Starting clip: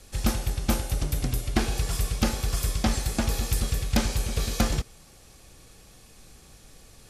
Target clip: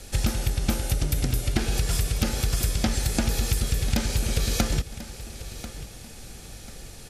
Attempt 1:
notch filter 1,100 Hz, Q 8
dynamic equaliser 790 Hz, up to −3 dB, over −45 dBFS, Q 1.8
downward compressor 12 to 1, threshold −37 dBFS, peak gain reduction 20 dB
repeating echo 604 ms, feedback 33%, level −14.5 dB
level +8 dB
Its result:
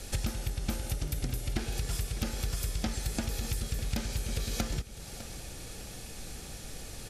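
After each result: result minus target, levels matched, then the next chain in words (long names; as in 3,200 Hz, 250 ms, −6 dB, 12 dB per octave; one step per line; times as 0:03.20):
downward compressor: peak gain reduction +8.5 dB; echo 437 ms early
notch filter 1,100 Hz, Q 8
dynamic equaliser 790 Hz, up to −3 dB, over −45 dBFS, Q 1.8
downward compressor 12 to 1, threshold −27.5 dBFS, peak gain reduction 11 dB
repeating echo 604 ms, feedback 33%, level −14.5 dB
level +8 dB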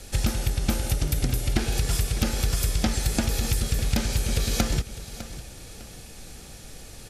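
echo 437 ms early
notch filter 1,100 Hz, Q 8
dynamic equaliser 790 Hz, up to −3 dB, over −45 dBFS, Q 1.8
downward compressor 12 to 1, threshold −27.5 dBFS, peak gain reduction 11 dB
repeating echo 1,041 ms, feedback 33%, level −14.5 dB
level +8 dB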